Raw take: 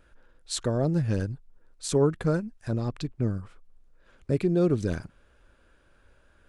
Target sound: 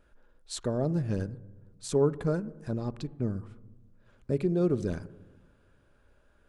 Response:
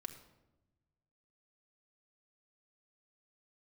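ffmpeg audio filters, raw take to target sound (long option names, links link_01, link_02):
-filter_complex "[0:a]asplit=2[link_01][link_02];[link_02]lowpass=1300[link_03];[1:a]atrim=start_sample=2205,asetrate=36603,aresample=44100,lowshelf=frequency=130:gain=-8.5[link_04];[link_03][link_04]afir=irnorm=-1:irlink=0,volume=-2dB[link_05];[link_01][link_05]amix=inputs=2:normalize=0,volume=-6dB"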